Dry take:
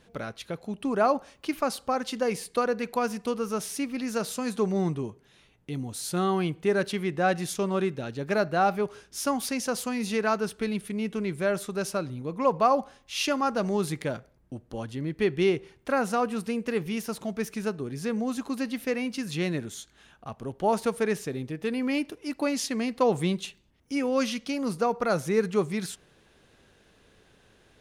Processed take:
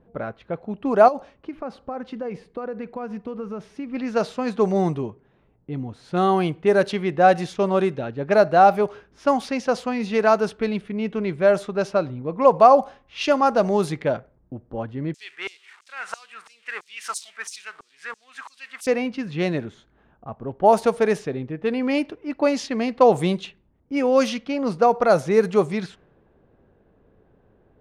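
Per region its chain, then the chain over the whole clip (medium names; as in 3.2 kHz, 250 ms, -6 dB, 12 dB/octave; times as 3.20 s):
1.08–3.92 s: compression 16:1, threshold -28 dBFS + peaking EQ 1.1 kHz -4.5 dB 2.4 oct
15.14–18.87 s: zero-crossing glitches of -29.5 dBFS + peaking EQ 8.5 kHz +8.5 dB 0.55 oct + LFO high-pass saw down 3 Hz 990–6800 Hz
whole clip: level-controlled noise filter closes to 780 Hz, open at -20.5 dBFS; dynamic bell 670 Hz, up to +8 dB, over -40 dBFS, Q 1.2; trim +3.5 dB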